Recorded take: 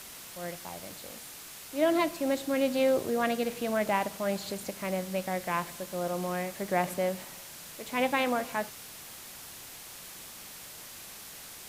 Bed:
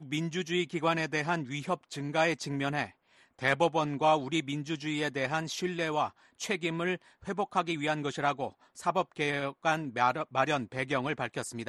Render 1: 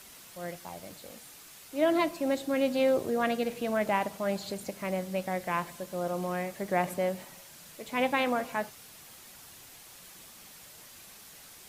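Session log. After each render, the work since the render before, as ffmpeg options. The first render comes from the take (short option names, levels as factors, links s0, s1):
-af "afftdn=nr=6:nf=-46"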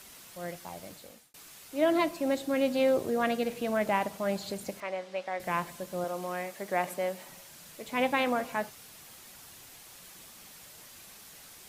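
-filter_complex "[0:a]asettb=1/sr,asplit=3[s0][s1][s2];[s0]atrim=end=4.804[s3];[s1]atrim=start=4.8:end=5.4,asetpts=PTS-STARTPTS,afade=t=in:d=0.004:c=qsin,afade=t=out:st=0.596:d=0.004:c=qsin,highpass=490,lowpass=4400[s4];[s2]atrim=start=5.396[s5];[s3][s4]acrossfade=d=0.004:c1=hsin:c2=qsin[s6];[s6][s5]acrossfade=d=0.004:c1=qsin:c2=hsin,asettb=1/sr,asplit=3[s7][s8][s9];[s7]atrim=end=6.044[s10];[s8]atrim=start=6.04:end=7.25,asetpts=PTS-STARTPTS,afade=t=in:d=0.004:c=qsin,afade=t=out:st=1.206:d=0.004:c=qsin,highpass=f=410:p=1[s11];[s9]atrim=start=7.246[s12];[s10][s11]acrossfade=d=0.004:c1=hsin:c2=qsin[s13];[s13][s12]acrossfade=d=0.004:c1=qsin:c2=hsin,asplit=2[s14][s15];[s14]atrim=end=1.34,asetpts=PTS-STARTPTS,afade=t=out:st=0.78:d=0.56:c=qsin[s16];[s15]atrim=start=1.34,asetpts=PTS-STARTPTS,afade=t=in:d=0.004:c=hsin[s17];[s16][s17]concat=n=2:v=0:a=1"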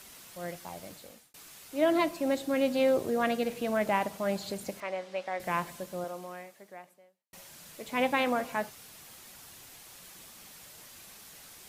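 -filter_complex "[0:a]asplit=2[s0][s1];[s0]atrim=end=7.33,asetpts=PTS-STARTPTS,afade=t=out:st=5.77:d=1.56:c=qua[s2];[s1]atrim=start=7.33,asetpts=PTS-STARTPTS,afade=t=in:d=0.004:c=hsin[s3];[s2][s3]concat=n=2:v=0:a=1"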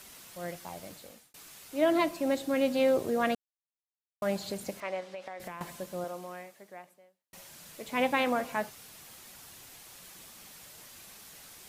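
-filter_complex "[0:a]asettb=1/sr,asplit=3[s0][s1][s2];[s0]atrim=end=5.004[s3];[s1]atrim=start=5:end=5.61,asetpts=PTS-STARTPTS,afade=t=in:d=0.004:c=qsin,afade=t=out:st=0.606:d=0.004:c=qsin,acompressor=threshold=0.0158:ratio=16:attack=3.2:release=140:knee=1:detection=peak[s4];[s2]atrim=start=5.606[s5];[s3][s4]acrossfade=d=0.004:c1=hsin:c2=qsin[s6];[s6][s5]acrossfade=d=0.004:c1=qsin:c2=hsin,asplit=3[s7][s8][s9];[s7]atrim=end=3.35,asetpts=PTS-STARTPTS,afade=t=out:st=3.346:d=0.004:c=hsin[s10];[s8]atrim=start=3.35:end=4.22,asetpts=PTS-STARTPTS,volume=0[s11];[s9]atrim=start=4.22,asetpts=PTS-STARTPTS,afade=t=in:d=0.004:c=hsin[s12];[s10][s11][s12]concat=n=3:v=0:a=1"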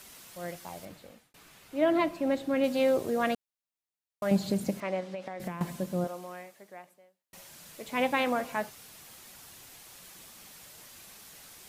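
-filter_complex "[0:a]asettb=1/sr,asplit=3[s0][s1][s2];[s0]atrim=end=0.854[s3];[s1]atrim=start=0.85:end=2.64,asetpts=PTS-STARTPTS,afade=t=in:d=0.004:c=qsin,afade=t=out:st=1.786:d=0.004:c=qsin,bass=f=250:g=3,treble=f=4000:g=-9[s4];[s2]atrim=start=2.636[s5];[s3][s4]acrossfade=d=0.004:c1=hsin:c2=qsin[s6];[s6][s5]acrossfade=d=0.004:c1=qsin:c2=hsin,asettb=1/sr,asplit=3[s7][s8][s9];[s7]atrim=end=4.314[s10];[s8]atrim=start=4.31:end=6.07,asetpts=PTS-STARTPTS,afade=t=in:d=0.004:c=qsin,afade=t=out:st=1.756:d=0.004:c=qsin,equalizer=f=180:t=o:w=2:g=12[s11];[s9]atrim=start=6.066[s12];[s10][s11]acrossfade=d=0.004:c1=hsin:c2=qsin[s13];[s13][s12]acrossfade=d=0.004:c1=qsin:c2=hsin"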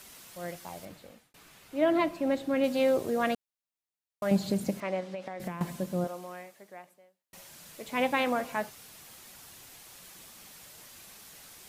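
-af anull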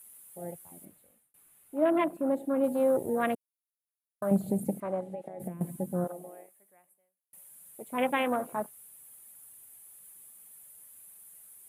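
-af "highshelf=f=7500:t=q:w=3:g=13.5,afwtdn=0.02"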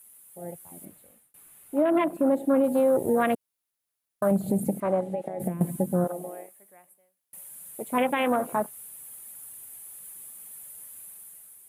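-af "alimiter=limit=0.0708:level=0:latency=1:release=181,dynaudnorm=f=220:g=7:m=2.66"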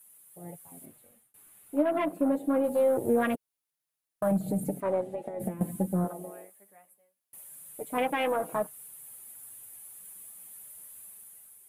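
-af "flanger=delay=6.2:depth=4.2:regen=-8:speed=0.24:shape=sinusoidal,aeval=exprs='0.188*(cos(1*acos(clip(val(0)/0.188,-1,1)))-cos(1*PI/2))+0.00188*(cos(8*acos(clip(val(0)/0.188,-1,1)))-cos(8*PI/2))':c=same"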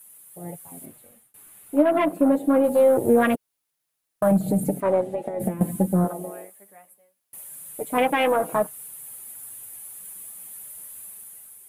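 -af "volume=2.37"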